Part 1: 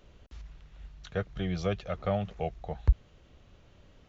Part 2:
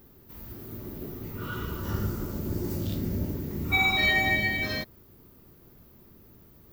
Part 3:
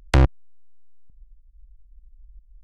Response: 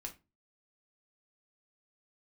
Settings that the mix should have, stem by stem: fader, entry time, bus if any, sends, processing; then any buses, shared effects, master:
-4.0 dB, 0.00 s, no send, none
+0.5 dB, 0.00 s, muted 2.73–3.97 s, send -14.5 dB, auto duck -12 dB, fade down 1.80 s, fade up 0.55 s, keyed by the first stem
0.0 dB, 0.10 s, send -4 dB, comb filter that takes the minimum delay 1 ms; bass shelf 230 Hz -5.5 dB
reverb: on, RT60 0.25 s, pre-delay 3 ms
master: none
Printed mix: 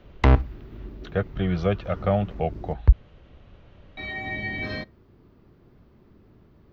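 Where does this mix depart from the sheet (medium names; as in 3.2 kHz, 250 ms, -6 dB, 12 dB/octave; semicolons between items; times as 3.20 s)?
stem 1 -4.0 dB -> +7.5 dB; master: extra distance through air 230 m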